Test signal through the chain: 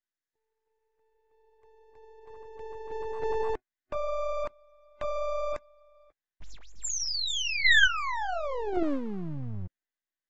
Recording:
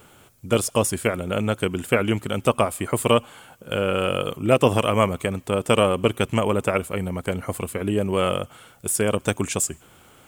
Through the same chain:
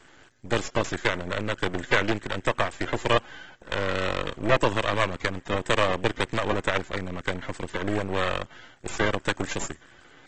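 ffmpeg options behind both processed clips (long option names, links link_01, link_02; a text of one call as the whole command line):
ffmpeg -i in.wav -filter_complex "[0:a]superequalizer=6b=2:11b=3.55:16b=0.501,acrossover=split=280|3000[link_01][link_02][link_03];[link_01]acompressor=threshold=-27dB:ratio=2[link_04];[link_04][link_02][link_03]amix=inputs=3:normalize=0,aeval=exprs='max(val(0),0)':channel_layout=same,lowshelf=frequency=470:gain=-3" -ar 48000 -c:a aac -b:a 24k out.aac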